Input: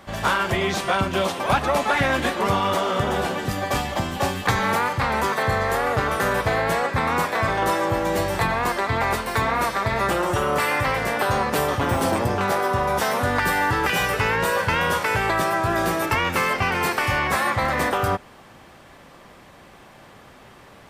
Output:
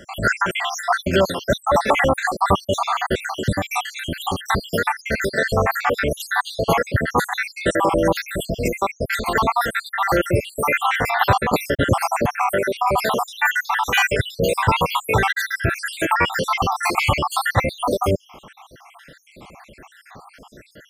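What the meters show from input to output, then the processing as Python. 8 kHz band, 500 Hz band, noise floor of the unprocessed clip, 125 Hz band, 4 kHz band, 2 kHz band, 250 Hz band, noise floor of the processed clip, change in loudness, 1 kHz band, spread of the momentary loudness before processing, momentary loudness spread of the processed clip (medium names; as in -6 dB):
+1.5 dB, +2.0 dB, -47 dBFS, +1.5 dB, +2.0 dB, +1.5 dB, +1.5 dB, -51 dBFS, +1.5 dB, +1.0 dB, 2 LU, 6 LU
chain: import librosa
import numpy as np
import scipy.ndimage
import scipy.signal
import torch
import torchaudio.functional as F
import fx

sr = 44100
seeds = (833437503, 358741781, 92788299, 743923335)

y = fx.spec_dropout(x, sr, seeds[0], share_pct=74)
y = F.gain(torch.from_numpy(y), 7.5).numpy()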